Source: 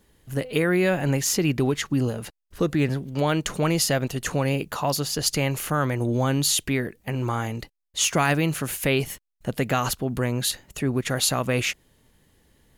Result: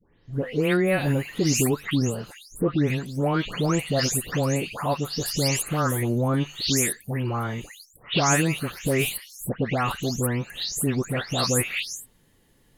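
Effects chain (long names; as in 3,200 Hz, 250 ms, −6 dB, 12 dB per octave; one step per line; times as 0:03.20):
every frequency bin delayed by itself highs late, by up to 328 ms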